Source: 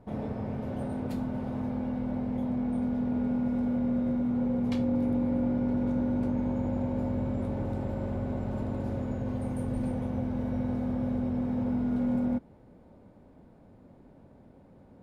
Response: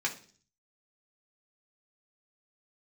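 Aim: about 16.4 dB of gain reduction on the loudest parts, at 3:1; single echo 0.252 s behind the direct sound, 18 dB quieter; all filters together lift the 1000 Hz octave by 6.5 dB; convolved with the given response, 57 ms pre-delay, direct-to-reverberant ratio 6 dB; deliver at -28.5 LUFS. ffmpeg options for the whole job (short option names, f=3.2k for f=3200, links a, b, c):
-filter_complex "[0:a]equalizer=f=1k:t=o:g=8.5,acompressor=threshold=-48dB:ratio=3,aecho=1:1:252:0.126,asplit=2[a][b];[1:a]atrim=start_sample=2205,adelay=57[c];[b][c]afir=irnorm=-1:irlink=0,volume=-12.5dB[d];[a][d]amix=inputs=2:normalize=0,volume=16.5dB"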